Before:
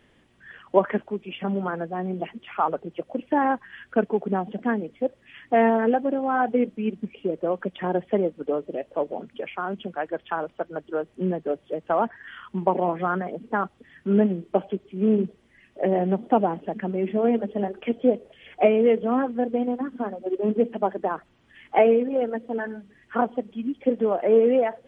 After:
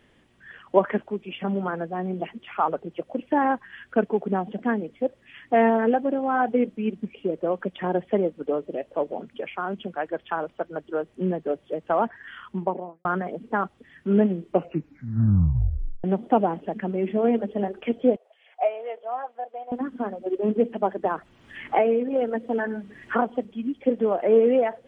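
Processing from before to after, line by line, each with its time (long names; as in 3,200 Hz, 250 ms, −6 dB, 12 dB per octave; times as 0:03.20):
0:12.43–0:13.05: fade out and dull
0:14.48: tape stop 1.56 s
0:18.16–0:19.72: four-pole ladder high-pass 630 Hz, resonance 60%
0:21.05–0:23.45: multiband upward and downward compressor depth 70%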